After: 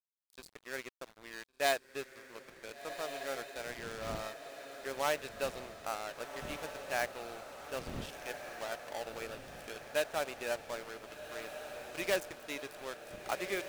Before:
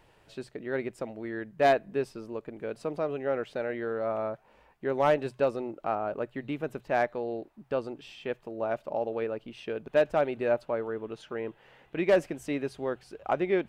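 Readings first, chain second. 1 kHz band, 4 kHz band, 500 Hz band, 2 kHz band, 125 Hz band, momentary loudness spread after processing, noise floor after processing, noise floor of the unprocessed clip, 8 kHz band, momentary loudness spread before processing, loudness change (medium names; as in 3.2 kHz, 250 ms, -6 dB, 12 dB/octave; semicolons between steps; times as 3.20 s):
-7.5 dB, +3.5 dB, -11.0 dB, -2.5 dB, -10.5 dB, 13 LU, -67 dBFS, -62 dBFS, no reading, 13 LU, -8.5 dB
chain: wind noise 170 Hz -39 dBFS; bass shelf 250 Hz -6 dB; crossover distortion -39.5 dBFS; pre-emphasis filter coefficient 0.9; on a send: echo that smears into a reverb 1502 ms, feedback 61%, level -9 dB; on the sum: trim +9.5 dB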